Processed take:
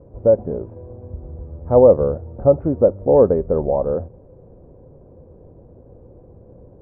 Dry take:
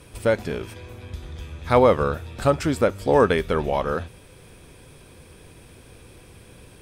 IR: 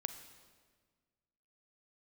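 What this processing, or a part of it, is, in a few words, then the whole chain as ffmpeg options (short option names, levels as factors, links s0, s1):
under water: -af "lowpass=f=760:w=0.5412,lowpass=f=760:w=1.3066,equalizer=f=540:t=o:w=0.32:g=6.5,volume=1.33"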